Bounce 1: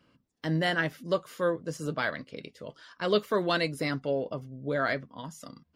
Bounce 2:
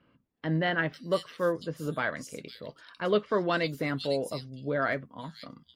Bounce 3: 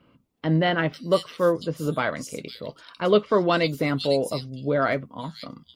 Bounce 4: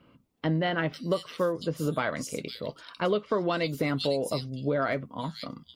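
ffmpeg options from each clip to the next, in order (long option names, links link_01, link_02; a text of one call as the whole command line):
ffmpeg -i in.wav -filter_complex "[0:a]acrossover=split=3600[link_01][link_02];[link_02]adelay=500[link_03];[link_01][link_03]amix=inputs=2:normalize=0" out.wav
ffmpeg -i in.wav -af "equalizer=frequency=1700:width_type=o:width=0.3:gain=-8.5,volume=7dB" out.wav
ffmpeg -i in.wav -af "acompressor=threshold=-23dB:ratio=10" out.wav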